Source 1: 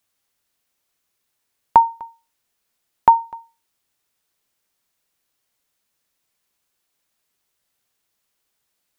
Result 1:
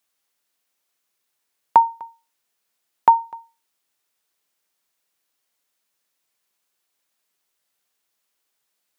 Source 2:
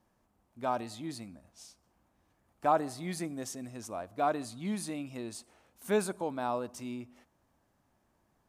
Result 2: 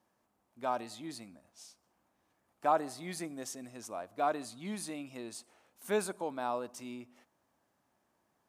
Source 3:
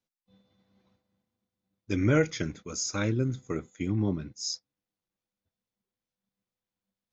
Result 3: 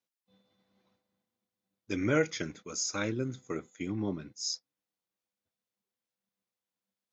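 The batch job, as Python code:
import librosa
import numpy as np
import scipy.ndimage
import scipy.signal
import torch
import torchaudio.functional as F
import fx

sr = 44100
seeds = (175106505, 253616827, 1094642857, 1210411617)

y = fx.highpass(x, sr, hz=290.0, slope=6)
y = F.gain(torch.from_numpy(y), -1.0).numpy()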